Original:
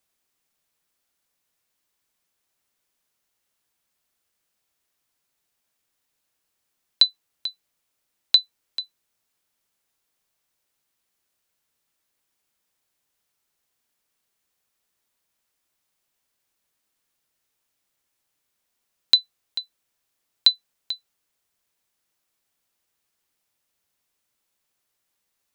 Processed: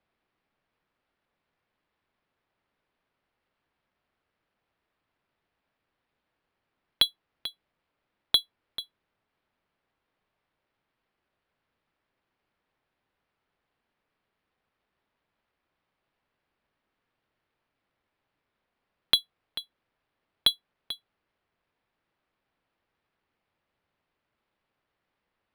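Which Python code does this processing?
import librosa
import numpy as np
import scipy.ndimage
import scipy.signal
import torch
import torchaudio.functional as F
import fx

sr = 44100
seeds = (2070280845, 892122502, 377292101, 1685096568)

y = fx.air_absorb(x, sr, metres=260.0)
y = np.interp(np.arange(len(y)), np.arange(len(y))[::6], y[::6])
y = F.gain(torch.from_numpy(y), 6.0).numpy()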